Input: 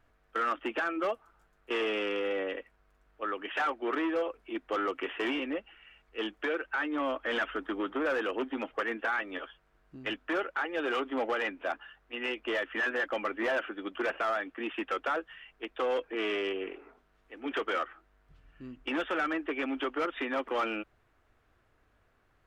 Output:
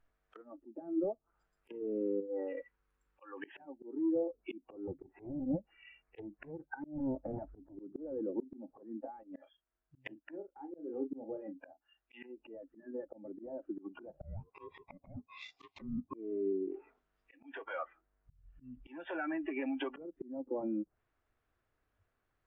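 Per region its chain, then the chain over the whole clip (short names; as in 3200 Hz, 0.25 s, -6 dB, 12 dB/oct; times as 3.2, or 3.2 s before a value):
2.2–3.37 treble ducked by the level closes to 1300 Hz, closed at -33.5 dBFS + compressor 3:1, threshold -40 dBFS + Butterworth band-stop 670 Hz, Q 3.9
4.87–7.77 Butterworth band-stop 3800 Hz, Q 1.2 + air absorption 140 m + Doppler distortion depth 0.7 ms
9.23–12.3 doubler 37 ms -8 dB + upward expander, over -49 dBFS
14.21–16.14 CVSD 32 kbps + ring modulator 740 Hz
17.37–19.95 high shelf 2000 Hz -10 dB + compressor 10:1, threshold -38 dBFS
whole clip: treble ducked by the level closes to 310 Hz, closed at -32 dBFS; spectral noise reduction 19 dB; auto swell 0.347 s; gain +6.5 dB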